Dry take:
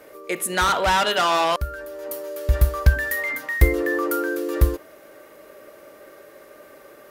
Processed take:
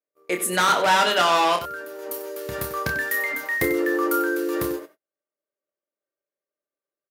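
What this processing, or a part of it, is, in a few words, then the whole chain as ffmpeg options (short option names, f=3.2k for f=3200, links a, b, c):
slapback doubling: -filter_complex "[0:a]highpass=f=150:w=0.5412,highpass=f=150:w=1.3066,agate=range=-49dB:threshold=-37dB:ratio=16:detection=peak,asplit=3[a][b][c];[b]adelay=28,volume=-6dB[d];[c]adelay=94,volume=-12dB[e];[a][d][e]amix=inputs=3:normalize=0"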